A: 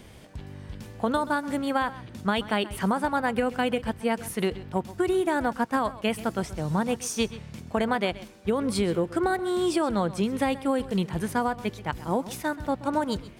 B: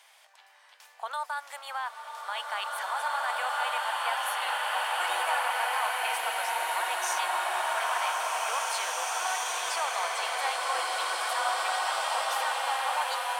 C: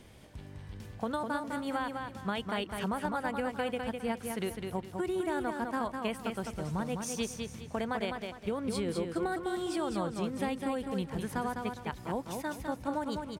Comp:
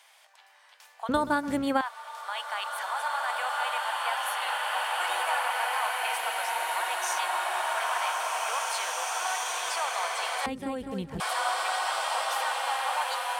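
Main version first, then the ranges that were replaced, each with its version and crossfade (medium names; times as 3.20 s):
B
1.09–1.81 s: from A
10.46–11.20 s: from C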